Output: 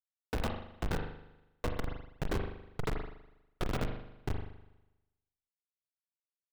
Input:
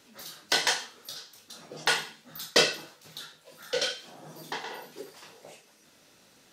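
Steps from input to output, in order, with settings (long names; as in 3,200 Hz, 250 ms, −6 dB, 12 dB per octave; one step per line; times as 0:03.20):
slices reordered back to front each 82 ms, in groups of 4
ambience of single reflections 10 ms −15.5 dB, 52 ms −8.5 dB
formants moved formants −4 semitones
low-pass filter 8,200 Hz 12 dB per octave
mains-hum notches 60/120/180/240/300/360/420/480/540 Hz
downward compressor 6 to 1, threshold −32 dBFS, peak gain reduction 14.5 dB
comparator with hysteresis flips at −27.5 dBFS
high-shelf EQ 5,300 Hz −7.5 dB
spring reverb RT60 1 s, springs 40 ms, chirp 25 ms, DRR 7.5 dB
level that may fall only so fast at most 88 dB per second
level +10.5 dB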